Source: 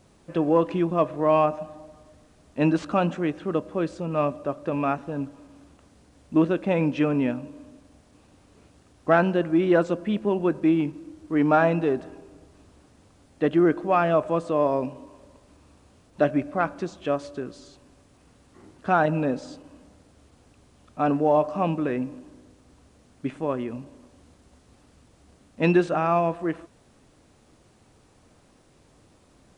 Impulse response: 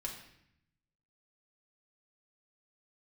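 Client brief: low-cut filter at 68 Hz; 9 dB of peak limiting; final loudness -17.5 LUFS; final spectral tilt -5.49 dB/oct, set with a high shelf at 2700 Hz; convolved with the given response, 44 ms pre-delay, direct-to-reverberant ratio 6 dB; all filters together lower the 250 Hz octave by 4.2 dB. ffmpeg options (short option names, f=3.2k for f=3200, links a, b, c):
-filter_complex "[0:a]highpass=68,equalizer=f=250:t=o:g=-6.5,highshelf=f=2.7k:g=5.5,alimiter=limit=-15.5dB:level=0:latency=1,asplit=2[a][b];[1:a]atrim=start_sample=2205,adelay=44[c];[b][c]afir=irnorm=-1:irlink=0,volume=-5.5dB[d];[a][d]amix=inputs=2:normalize=0,volume=10dB"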